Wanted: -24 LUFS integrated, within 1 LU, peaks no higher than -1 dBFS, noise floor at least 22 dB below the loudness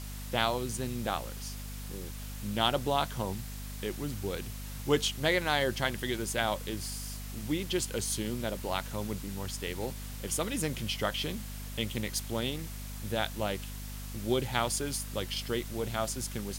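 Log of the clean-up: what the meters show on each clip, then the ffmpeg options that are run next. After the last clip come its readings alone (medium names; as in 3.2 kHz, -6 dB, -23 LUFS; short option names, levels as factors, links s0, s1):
hum 50 Hz; highest harmonic 250 Hz; hum level -39 dBFS; noise floor -41 dBFS; noise floor target -56 dBFS; loudness -33.5 LUFS; peak level -11.0 dBFS; loudness target -24.0 LUFS
-> -af "bandreject=f=50:t=h:w=4,bandreject=f=100:t=h:w=4,bandreject=f=150:t=h:w=4,bandreject=f=200:t=h:w=4,bandreject=f=250:t=h:w=4"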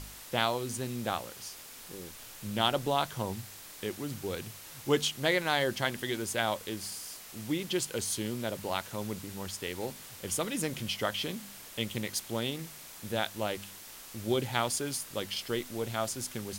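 hum not found; noise floor -48 dBFS; noise floor target -56 dBFS
-> -af "afftdn=nr=8:nf=-48"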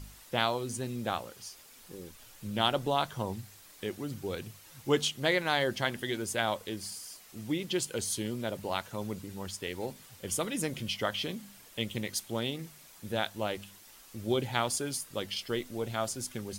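noise floor -55 dBFS; noise floor target -56 dBFS
-> -af "afftdn=nr=6:nf=-55"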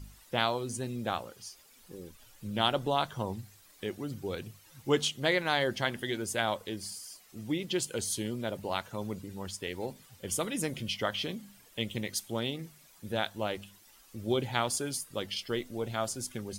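noise floor -59 dBFS; loudness -33.5 LUFS; peak level -11.5 dBFS; loudness target -24.0 LUFS
-> -af "volume=2.99"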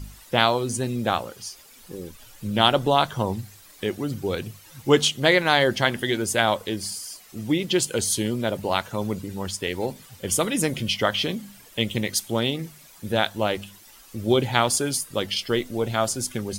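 loudness -24.0 LUFS; peak level -2.0 dBFS; noise floor -50 dBFS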